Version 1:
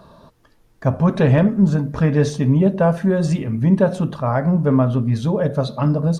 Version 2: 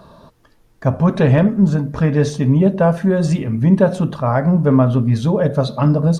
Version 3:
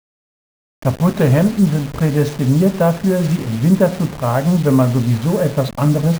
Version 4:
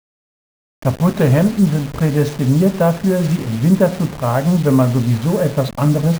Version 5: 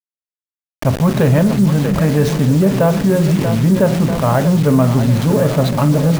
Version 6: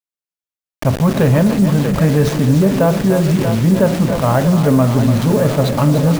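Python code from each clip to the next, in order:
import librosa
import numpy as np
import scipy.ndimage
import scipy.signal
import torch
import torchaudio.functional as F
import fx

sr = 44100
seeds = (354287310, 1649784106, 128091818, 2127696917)

y1 = fx.rider(x, sr, range_db=10, speed_s=2.0)
y1 = y1 * librosa.db_to_amplitude(2.0)
y2 = fx.delta_hold(y1, sr, step_db=-25.0)
y3 = y2
y4 = fx.echo_split(y3, sr, split_hz=310.0, low_ms=294, high_ms=637, feedback_pct=52, wet_db=-11.0)
y4 = fx.env_flatten(y4, sr, amount_pct=50)
y4 = y4 * librosa.db_to_amplitude(-1.0)
y5 = y4 + 10.0 ** (-10.0 / 20.0) * np.pad(y4, (int(292 * sr / 1000.0), 0))[:len(y4)]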